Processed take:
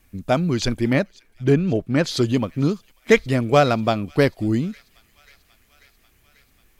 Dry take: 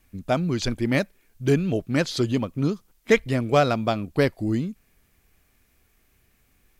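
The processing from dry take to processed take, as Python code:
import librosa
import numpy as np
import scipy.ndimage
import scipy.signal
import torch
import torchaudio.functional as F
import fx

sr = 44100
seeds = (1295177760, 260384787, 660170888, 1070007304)

y = fx.high_shelf(x, sr, hz=3900.0, db=-12.0, at=(0.93, 2.04))
y = fx.echo_wet_highpass(y, sr, ms=540, feedback_pct=71, hz=2100.0, wet_db=-23)
y = y * librosa.db_to_amplitude(3.5)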